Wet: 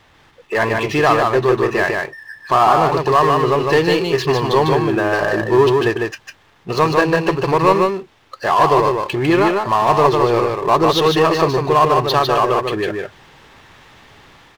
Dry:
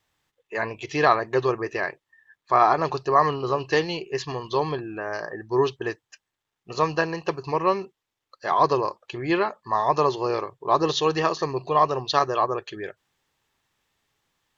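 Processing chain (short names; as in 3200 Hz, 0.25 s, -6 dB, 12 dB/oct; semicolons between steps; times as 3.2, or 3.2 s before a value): median filter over 5 samples; high shelf 6400 Hz -12 dB; in parallel at -1 dB: compressor, threshold -32 dBFS, peak gain reduction 18 dB; on the sum: power-law curve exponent 0.7; AGC gain up to 5.5 dB; on a send: echo 0.151 s -3.5 dB; on the sum: gain -1 dB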